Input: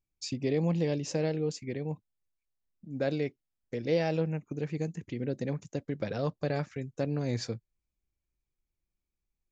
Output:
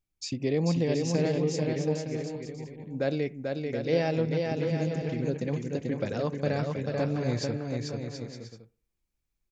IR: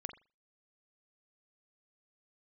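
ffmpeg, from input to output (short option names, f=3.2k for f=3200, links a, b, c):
-filter_complex "[0:a]aecho=1:1:440|726|911.9|1033|1111:0.631|0.398|0.251|0.158|0.1,asplit=2[a][b];[1:a]atrim=start_sample=2205,asetrate=30870,aresample=44100[c];[b][c]afir=irnorm=-1:irlink=0,volume=-11.5dB[d];[a][d]amix=inputs=2:normalize=0"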